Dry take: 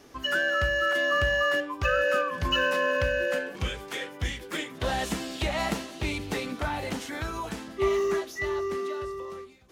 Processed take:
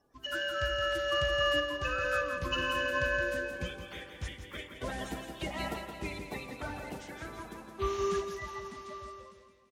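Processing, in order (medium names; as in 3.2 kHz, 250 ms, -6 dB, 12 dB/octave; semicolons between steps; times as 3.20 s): coarse spectral quantiser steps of 30 dB; feedback delay 169 ms, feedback 58%, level -6 dB; spring tank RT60 3.1 s, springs 32 ms, chirp 30 ms, DRR 10.5 dB; upward expansion 1.5:1, over -47 dBFS; trim -5.5 dB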